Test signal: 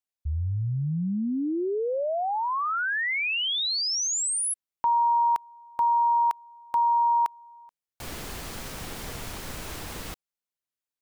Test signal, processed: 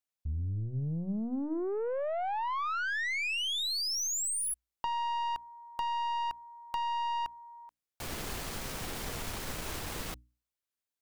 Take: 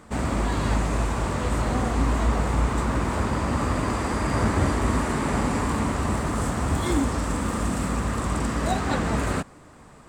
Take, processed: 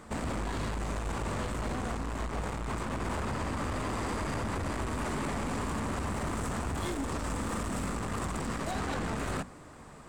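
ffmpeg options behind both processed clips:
ffmpeg -i in.wav -af "aeval=exprs='(tanh(20*val(0)+0.3)-tanh(0.3))/20':channel_layout=same,acompressor=threshold=-34dB:ratio=6:attack=40:release=25:knee=1:detection=rms,bandreject=frequency=60:width_type=h:width=6,bandreject=frequency=120:width_type=h:width=6,bandreject=frequency=180:width_type=h:width=6,bandreject=frequency=240:width_type=h:width=6,bandreject=frequency=300:width_type=h:width=6" out.wav

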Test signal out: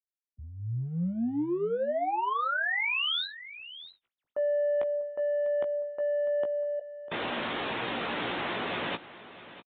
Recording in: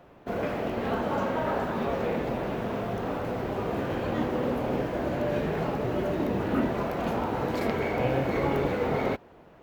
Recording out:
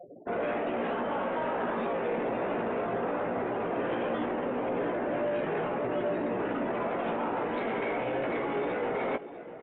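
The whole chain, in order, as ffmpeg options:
ffmpeg -i in.wav -filter_complex "[0:a]afftfilt=real='re*gte(hypot(re,im),0.00891)':imag='im*gte(hypot(re,im),0.00891)':win_size=1024:overlap=0.75,highpass=260,alimiter=level_in=1.5dB:limit=-24dB:level=0:latency=1:release=15,volume=-1.5dB,areverse,acompressor=threshold=-39dB:ratio=6,areverse,aeval=exprs='0.0355*(cos(1*acos(clip(val(0)/0.0355,-1,1)))-cos(1*PI/2))+0.002*(cos(5*acos(clip(val(0)/0.0355,-1,1)))-cos(5*PI/2))':channel_layout=same,asplit=2[link_01][link_02];[link_02]asoftclip=type=hard:threshold=-39.5dB,volume=-7.5dB[link_03];[link_01][link_03]amix=inputs=2:normalize=0,asplit=2[link_04][link_05];[link_05]adelay=17,volume=-7dB[link_06];[link_04][link_06]amix=inputs=2:normalize=0,aecho=1:1:648:0.168,aresample=8000,aresample=44100,volume=6dB" out.wav

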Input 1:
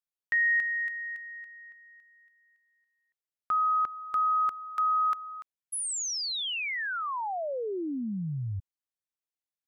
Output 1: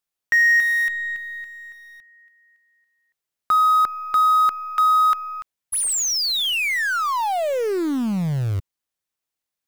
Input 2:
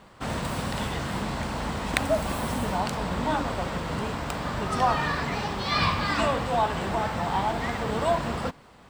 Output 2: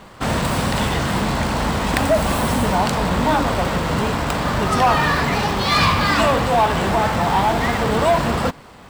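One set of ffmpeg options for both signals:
ffmpeg -i in.wav -filter_complex "[0:a]asplit=2[link_01][link_02];[link_02]acrusher=bits=6:dc=4:mix=0:aa=0.000001,volume=-10.5dB[link_03];[link_01][link_03]amix=inputs=2:normalize=0,asoftclip=type=tanh:threshold=-18dB,volume=8.5dB" out.wav

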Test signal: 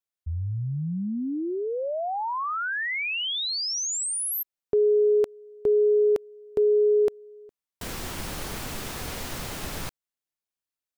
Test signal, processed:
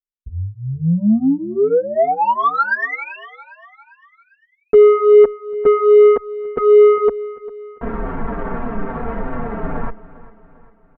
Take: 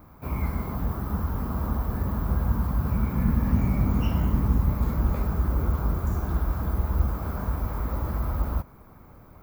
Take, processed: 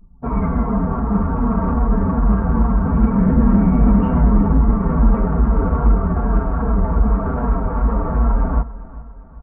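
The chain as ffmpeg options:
ffmpeg -i in.wav -filter_complex "[0:a]lowpass=frequency=1600:width=0.5412,lowpass=frequency=1600:width=1.3066,anlmdn=0.631,equalizer=frequency=70:width_type=o:width=0.3:gain=-10,aecho=1:1:4.4:0.77,acontrast=89,asoftclip=type=tanh:threshold=-10.5dB,asplit=2[link_01][link_02];[link_02]aecho=0:1:399|798|1197|1596:0.119|0.0582|0.0285|0.014[link_03];[link_01][link_03]amix=inputs=2:normalize=0,asplit=2[link_04][link_05];[link_05]adelay=7.1,afreqshift=-2.5[link_06];[link_04][link_06]amix=inputs=2:normalize=1,volume=7dB" out.wav

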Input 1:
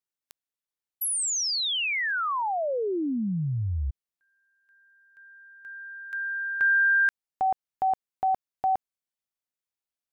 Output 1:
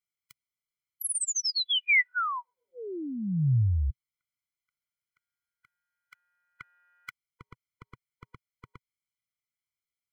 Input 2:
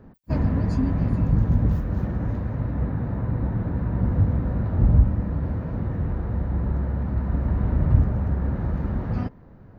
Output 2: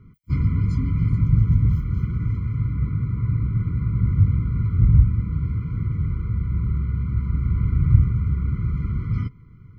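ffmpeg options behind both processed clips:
ffmpeg -i in.wav -af "equalizer=frequency=125:width_type=o:width=1:gain=7,equalizer=frequency=250:width_type=o:width=1:gain=-6,equalizer=frequency=500:width_type=o:width=1:gain=-10,equalizer=frequency=1000:width_type=o:width=1:gain=-5,equalizer=frequency=2000:width_type=o:width=1:gain=9,afftfilt=real='re*eq(mod(floor(b*sr/1024/490),2),0)':imag='im*eq(mod(floor(b*sr/1024/490),2),0)':win_size=1024:overlap=0.75" out.wav

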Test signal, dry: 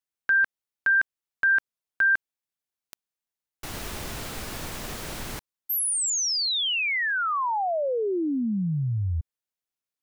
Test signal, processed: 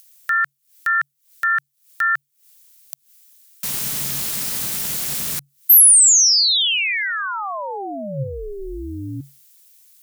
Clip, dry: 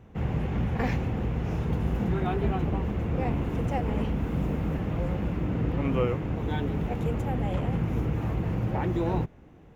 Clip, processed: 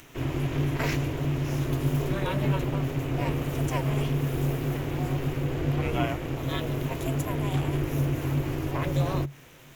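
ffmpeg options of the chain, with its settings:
ffmpeg -i in.wav -filter_complex "[0:a]aeval=exprs='val(0)*sin(2*PI*200*n/s)':channel_layout=same,acrossover=split=1200[link_01][link_02];[link_01]equalizer=frequency=140:width=7.7:gain=14[link_03];[link_02]acompressor=mode=upward:threshold=-51dB:ratio=2.5:attack=3.6:release=158:knee=2.83:detection=peak[link_04];[link_03][link_04]amix=inputs=2:normalize=0,crystalizer=i=7.5:c=0,volume=-1dB" out.wav

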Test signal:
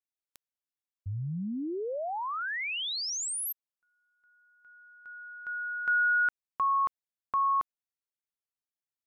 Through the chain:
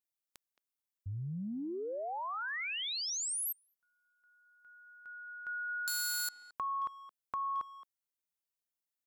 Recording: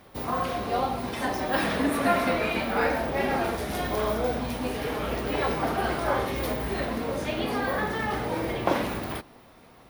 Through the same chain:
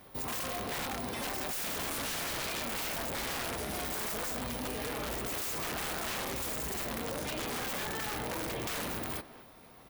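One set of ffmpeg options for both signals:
ffmpeg -i in.wav -filter_complex "[0:a]highshelf=frequency=7400:gain=8.5,aeval=exprs='(mod(12.6*val(0)+1,2)-1)/12.6':channel_layout=same,acompressor=threshold=-32dB:ratio=12:attack=9.8:release=26:knee=6:detection=peak,asplit=2[link_01][link_02];[link_02]adelay=220,highpass=300,lowpass=3400,asoftclip=type=hard:threshold=-32dB,volume=-14dB[link_03];[link_01][link_03]amix=inputs=2:normalize=0,volume=-3.5dB" out.wav

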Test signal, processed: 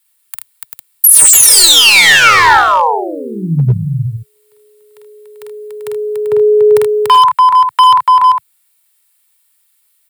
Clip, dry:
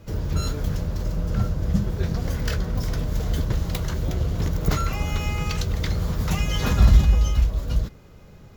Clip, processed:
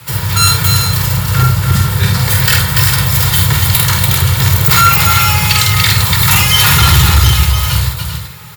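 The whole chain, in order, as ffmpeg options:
ffmpeg -i in.wav -filter_complex "[0:a]equalizer=frequency=125:width_type=o:width=1:gain=10,equalizer=frequency=250:width_type=o:width=1:gain=-9,equalizer=frequency=500:width_type=o:width=1:gain=-7,equalizer=frequency=1000:width_type=o:width=1:gain=9,equalizer=frequency=2000:width_type=o:width=1:gain=6,equalizer=frequency=4000:width_type=o:width=1:gain=4,equalizer=frequency=8000:width_type=o:width=1:gain=9,afreqshift=14,highpass=frequency=80:width=0.5412,highpass=frequency=80:width=1.3066,equalizer=frequency=6200:width=1.8:gain=-14,aecho=1:1:48|78|289|391|453:0.631|0.282|0.531|0.376|0.2,crystalizer=i=7.5:c=0,asplit=2[link_01][link_02];[link_02]alimiter=limit=-2.5dB:level=0:latency=1,volume=1dB[link_03];[link_01][link_03]amix=inputs=2:normalize=0,asoftclip=type=hard:threshold=-3.5dB,aecho=1:1:2.2:0.43,volume=-1dB" out.wav

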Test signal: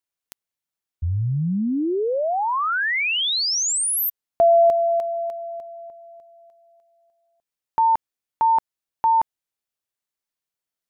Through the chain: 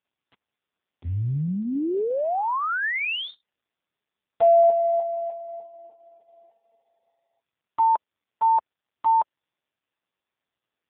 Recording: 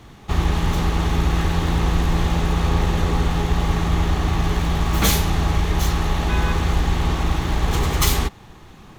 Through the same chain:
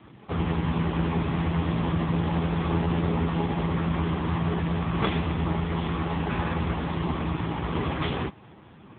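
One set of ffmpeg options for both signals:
ffmpeg -i in.wav -af "aemphasis=mode=reproduction:type=50kf" -ar 8000 -c:a libopencore_amrnb -b:a 5150 out.amr

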